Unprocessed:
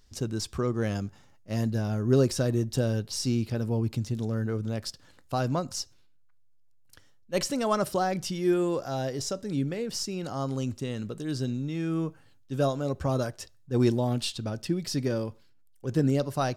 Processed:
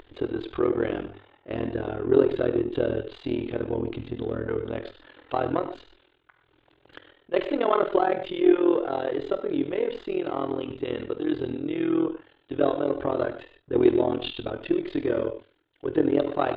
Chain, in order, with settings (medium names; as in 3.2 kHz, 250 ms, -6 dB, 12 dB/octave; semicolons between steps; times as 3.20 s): partial rectifier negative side -3 dB; in parallel at -1 dB: compression, threshold -35 dBFS, peak gain reduction 16.5 dB; on the sum: elliptic low-pass 3.5 kHz, stop band 40 dB; reverberation, pre-delay 3 ms, DRR 7 dB; AM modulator 41 Hz, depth 85%; upward compressor, threshold -43 dBFS; resonant low shelf 260 Hz -8.5 dB, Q 3; hum notches 50/100 Hz; trim +5.5 dB